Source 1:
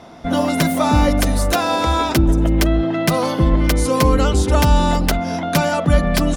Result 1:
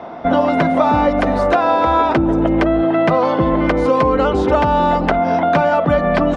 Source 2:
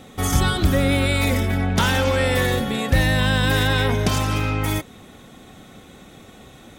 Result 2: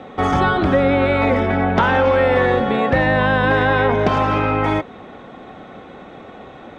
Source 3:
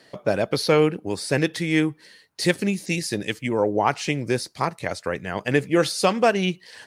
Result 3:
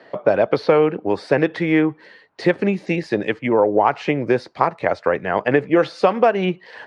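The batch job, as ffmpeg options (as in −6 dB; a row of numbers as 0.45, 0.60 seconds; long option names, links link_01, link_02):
-filter_complex "[0:a]lowpass=3400,equalizer=frequency=740:width=0.33:gain=14.5,acrossover=split=96|2600[link_01][link_02][link_03];[link_01]acompressor=threshold=-25dB:ratio=4[link_04];[link_02]acompressor=threshold=-9dB:ratio=4[link_05];[link_03]acompressor=threshold=-33dB:ratio=4[link_06];[link_04][link_05][link_06]amix=inputs=3:normalize=0,volume=-3dB"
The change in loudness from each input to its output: +2.0, +3.5, +4.0 LU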